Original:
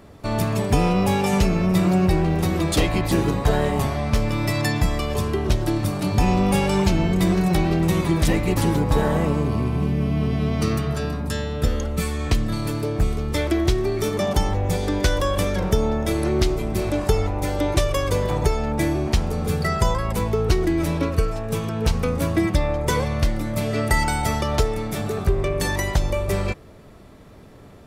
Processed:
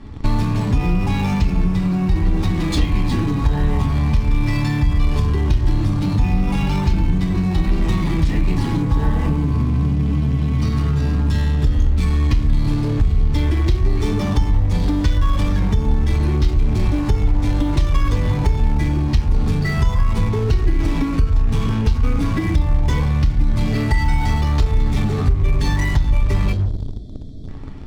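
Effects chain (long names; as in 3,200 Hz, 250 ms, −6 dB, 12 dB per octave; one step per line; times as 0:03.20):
parametric band 580 Hz −11.5 dB 0.73 octaves
convolution reverb RT60 0.45 s, pre-delay 4 ms, DRR −4 dB
gain on a spectral selection 0:26.52–0:27.49, 740–3,200 Hz −23 dB
low-pass filter 5,200 Hz 12 dB per octave
notch filter 1,300 Hz, Q 24
in parallel at −11 dB: fuzz pedal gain 32 dB, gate −31 dBFS
on the sum: downward compressor 6 to 1, threshold −19 dBFS, peak gain reduction 14 dB
low-shelf EQ 84 Hz +10.5 dB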